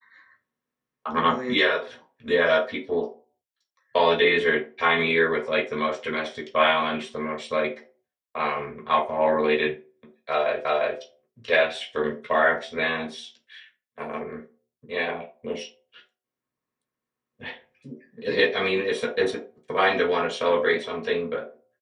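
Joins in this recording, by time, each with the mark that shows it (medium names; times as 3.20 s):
10.65 s: repeat of the last 0.35 s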